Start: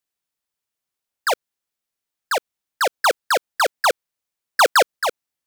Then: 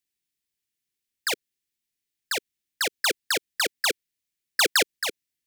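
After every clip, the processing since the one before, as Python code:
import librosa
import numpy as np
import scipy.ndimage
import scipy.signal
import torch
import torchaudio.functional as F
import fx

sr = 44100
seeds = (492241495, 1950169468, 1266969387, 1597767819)

y = fx.band_shelf(x, sr, hz=850.0, db=-15.5, octaves=1.7)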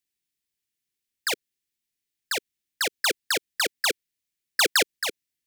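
y = x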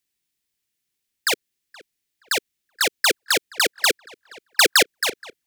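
y = fx.echo_filtered(x, sr, ms=474, feedback_pct=27, hz=2900.0, wet_db=-22.0)
y = y * librosa.db_to_amplitude(5.5)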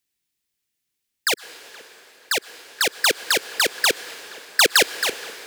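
y = fx.rev_plate(x, sr, seeds[0], rt60_s=4.3, hf_ratio=0.85, predelay_ms=95, drr_db=15.0)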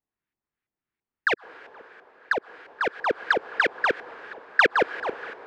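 y = fx.filter_lfo_lowpass(x, sr, shape='saw_up', hz=3.0, low_hz=850.0, high_hz=1800.0, q=1.7)
y = y * librosa.db_to_amplitude(-1.5)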